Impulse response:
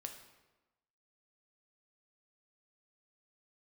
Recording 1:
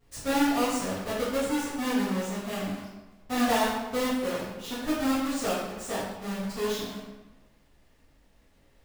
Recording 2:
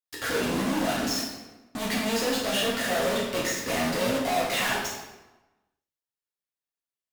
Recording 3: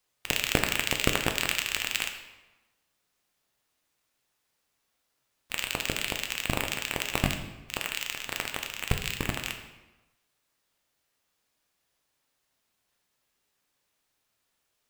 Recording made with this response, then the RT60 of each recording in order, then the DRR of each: 3; 1.1, 1.1, 1.1 s; -11.0, -5.5, 4.0 dB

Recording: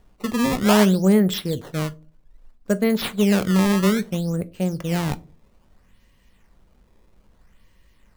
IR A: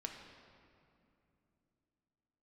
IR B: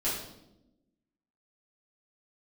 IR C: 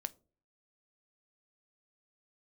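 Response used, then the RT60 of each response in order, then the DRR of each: C; 2.8, 0.90, 0.40 s; 2.0, -11.0, 13.0 dB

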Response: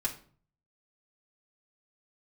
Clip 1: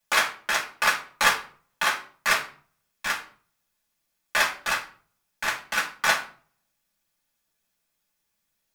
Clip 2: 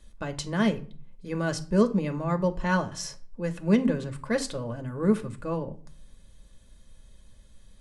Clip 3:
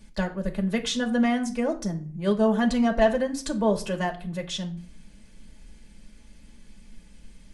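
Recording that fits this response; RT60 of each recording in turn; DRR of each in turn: 1; 0.45, 0.45, 0.45 s; -4.5, 5.5, 1.5 dB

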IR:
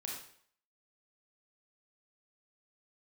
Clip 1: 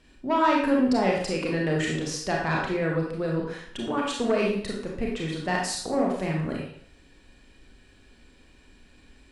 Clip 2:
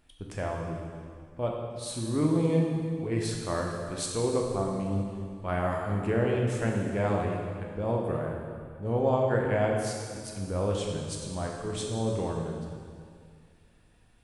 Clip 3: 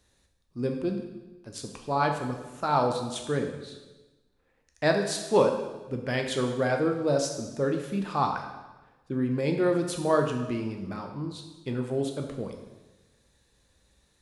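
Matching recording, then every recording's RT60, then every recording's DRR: 1; 0.60, 2.2, 1.2 s; -2.5, -1.0, 3.0 dB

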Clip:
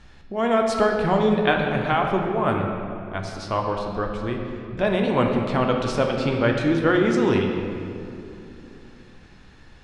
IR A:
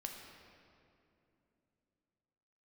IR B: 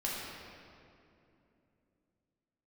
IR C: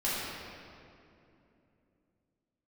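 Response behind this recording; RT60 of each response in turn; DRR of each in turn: A; 2.9, 2.8, 2.8 s; 1.0, -6.5, -11.0 dB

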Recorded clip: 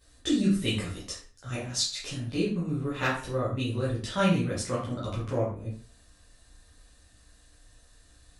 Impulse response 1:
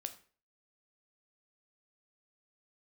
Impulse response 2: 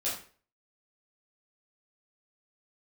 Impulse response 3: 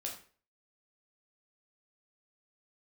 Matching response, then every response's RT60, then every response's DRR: 2; 0.40, 0.40, 0.40 s; 8.0, -8.5, -1.0 dB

